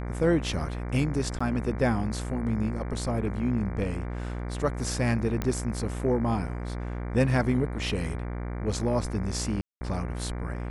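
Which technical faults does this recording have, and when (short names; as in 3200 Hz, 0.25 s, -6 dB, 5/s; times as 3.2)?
buzz 60 Hz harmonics 39 -33 dBFS
1.39–1.41 gap 15 ms
5.42 pop -15 dBFS
9.61–9.81 gap 0.2 s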